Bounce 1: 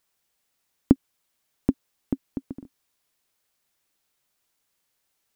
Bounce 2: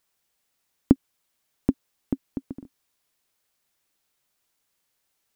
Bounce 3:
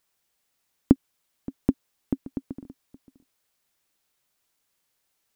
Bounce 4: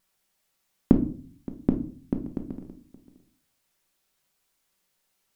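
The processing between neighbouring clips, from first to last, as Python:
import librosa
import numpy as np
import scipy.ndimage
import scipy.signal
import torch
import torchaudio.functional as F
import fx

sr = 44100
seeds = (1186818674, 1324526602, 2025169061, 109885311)

y1 = x
y2 = y1 + 10.0 ** (-19.0 / 20.0) * np.pad(y1, (int(573 * sr / 1000.0), 0))[:len(y1)]
y3 = fx.vibrato(y2, sr, rate_hz=0.95, depth_cents=13.0)
y3 = fx.room_shoebox(y3, sr, seeds[0], volume_m3=380.0, walls='furnished', distance_m=1.1)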